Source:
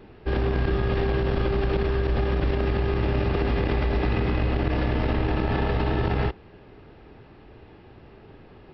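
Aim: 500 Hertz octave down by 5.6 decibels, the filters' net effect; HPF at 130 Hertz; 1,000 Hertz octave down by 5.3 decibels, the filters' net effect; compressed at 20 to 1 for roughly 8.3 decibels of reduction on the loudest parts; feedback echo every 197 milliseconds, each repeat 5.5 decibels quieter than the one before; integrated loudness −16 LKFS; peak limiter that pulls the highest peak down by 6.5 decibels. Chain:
high-pass filter 130 Hz
parametric band 500 Hz −7 dB
parametric band 1,000 Hz −4.5 dB
downward compressor 20 to 1, threshold −33 dBFS
brickwall limiter −31 dBFS
repeating echo 197 ms, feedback 53%, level −5.5 dB
level +23.5 dB

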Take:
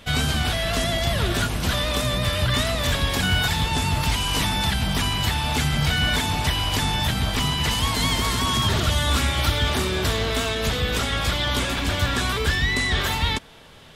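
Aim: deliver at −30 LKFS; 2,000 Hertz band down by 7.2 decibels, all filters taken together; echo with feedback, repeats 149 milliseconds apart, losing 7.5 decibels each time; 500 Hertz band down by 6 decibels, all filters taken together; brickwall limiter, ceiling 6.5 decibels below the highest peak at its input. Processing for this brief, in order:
parametric band 500 Hz −7.5 dB
parametric band 2,000 Hz −9 dB
brickwall limiter −17 dBFS
repeating echo 149 ms, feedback 42%, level −7.5 dB
level −5 dB

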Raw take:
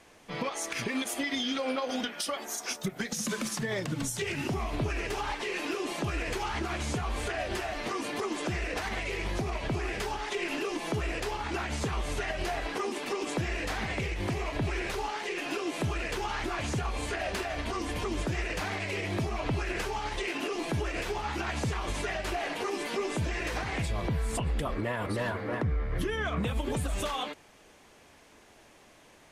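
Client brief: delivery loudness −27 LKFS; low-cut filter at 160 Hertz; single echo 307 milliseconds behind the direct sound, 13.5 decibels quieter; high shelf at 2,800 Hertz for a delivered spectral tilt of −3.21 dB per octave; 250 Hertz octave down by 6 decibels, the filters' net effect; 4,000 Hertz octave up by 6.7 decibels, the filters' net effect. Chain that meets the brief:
high-pass filter 160 Hz
parametric band 250 Hz −7.5 dB
high-shelf EQ 2,800 Hz +6 dB
parametric band 4,000 Hz +4 dB
single-tap delay 307 ms −13.5 dB
level +4 dB

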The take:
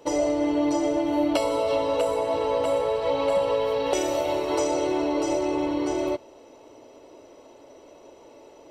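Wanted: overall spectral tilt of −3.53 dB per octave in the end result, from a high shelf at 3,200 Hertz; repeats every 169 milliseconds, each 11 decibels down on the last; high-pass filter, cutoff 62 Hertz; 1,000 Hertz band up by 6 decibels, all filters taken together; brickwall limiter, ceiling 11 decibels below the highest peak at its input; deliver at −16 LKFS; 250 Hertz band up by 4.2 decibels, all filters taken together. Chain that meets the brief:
high-pass filter 62 Hz
parametric band 250 Hz +5 dB
parametric band 1,000 Hz +6.5 dB
high-shelf EQ 3,200 Hz +4 dB
brickwall limiter −17.5 dBFS
repeating echo 169 ms, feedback 28%, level −11 dB
level +9.5 dB

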